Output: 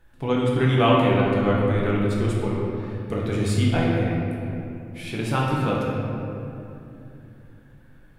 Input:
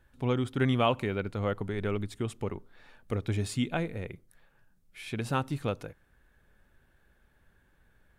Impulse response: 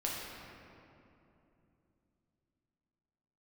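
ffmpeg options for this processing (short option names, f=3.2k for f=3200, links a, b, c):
-filter_complex "[1:a]atrim=start_sample=2205[a];[0:a][a]afir=irnorm=-1:irlink=0,volume=4.5dB"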